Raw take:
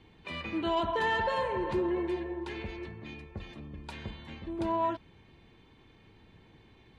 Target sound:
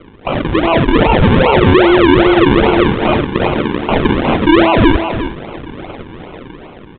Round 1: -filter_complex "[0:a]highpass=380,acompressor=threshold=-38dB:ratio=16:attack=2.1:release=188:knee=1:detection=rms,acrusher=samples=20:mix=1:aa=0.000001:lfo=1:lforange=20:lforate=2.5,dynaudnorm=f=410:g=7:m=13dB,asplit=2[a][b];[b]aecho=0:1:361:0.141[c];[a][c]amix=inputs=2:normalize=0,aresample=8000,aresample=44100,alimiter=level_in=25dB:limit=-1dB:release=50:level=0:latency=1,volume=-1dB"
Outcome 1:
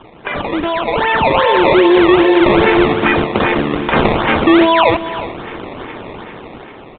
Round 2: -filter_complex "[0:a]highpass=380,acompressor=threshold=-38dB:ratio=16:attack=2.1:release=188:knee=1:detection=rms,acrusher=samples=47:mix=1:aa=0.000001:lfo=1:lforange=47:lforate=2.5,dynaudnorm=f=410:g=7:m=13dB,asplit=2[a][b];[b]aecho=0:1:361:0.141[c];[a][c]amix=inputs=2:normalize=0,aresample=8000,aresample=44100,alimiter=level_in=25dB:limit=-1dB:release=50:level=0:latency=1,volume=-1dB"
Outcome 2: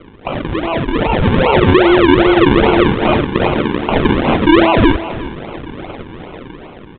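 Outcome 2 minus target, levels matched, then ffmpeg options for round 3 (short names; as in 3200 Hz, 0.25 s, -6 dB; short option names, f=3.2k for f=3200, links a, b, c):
compressor: peak gain reduction +6 dB
-filter_complex "[0:a]highpass=380,acompressor=threshold=-31.5dB:ratio=16:attack=2.1:release=188:knee=1:detection=rms,acrusher=samples=47:mix=1:aa=0.000001:lfo=1:lforange=47:lforate=2.5,dynaudnorm=f=410:g=7:m=13dB,asplit=2[a][b];[b]aecho=0:1:361:0.141[c];[a][c]amix=inputs=2:normalize=0,aresample=8000,aresample=44100,alimiter=level_in=25dB:limit=-1dB:release=50:level=0:latency=1,volume=-1dB"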